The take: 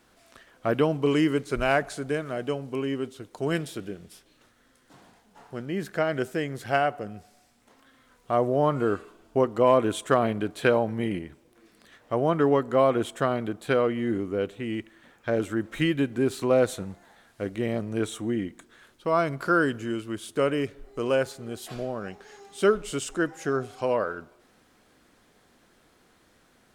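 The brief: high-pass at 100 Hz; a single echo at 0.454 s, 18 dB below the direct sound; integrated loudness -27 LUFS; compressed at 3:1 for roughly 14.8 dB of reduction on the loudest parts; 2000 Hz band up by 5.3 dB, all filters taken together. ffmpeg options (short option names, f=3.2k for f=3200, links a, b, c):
-af "highpass=100,equalizer=f=2k:t=o:g=7.5,acompressor=threshold=-35dB:ratio=3,aecho=1:1:454:0.126,volume=10dB"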